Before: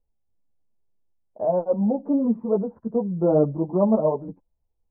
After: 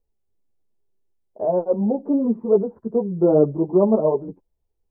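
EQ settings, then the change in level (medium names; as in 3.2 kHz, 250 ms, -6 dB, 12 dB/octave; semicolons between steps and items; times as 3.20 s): peaking EQ 390 Hz +10.5 dB 0.4 oct; 0.0 dB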